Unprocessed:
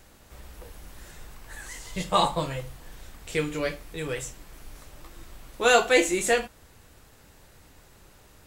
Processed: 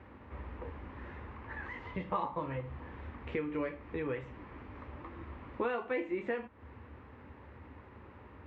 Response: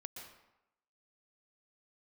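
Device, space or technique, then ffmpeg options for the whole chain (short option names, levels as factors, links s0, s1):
bass amplifier: -af "acompressor=threshold=0.0158:ratio=5,highpass=f=67:w=0.5412,highpass=f=67:w=1.3066,equalizer=f=73:t=q:w=4:g=7,equalizer=f=160:t=q:w=4:g=-8,equalizer=f=250:t=q:w=4:g=6,equalizer=f=680:t=q:w=4:g=-7,equalizer=f=1000:t=q:w=4:g=4,equalizer=f=1500:t=q:w=4:g=-5,lowpass=f=2100:w=0.5412,lowpass=f=2100:w=1.3066,volume=1.58"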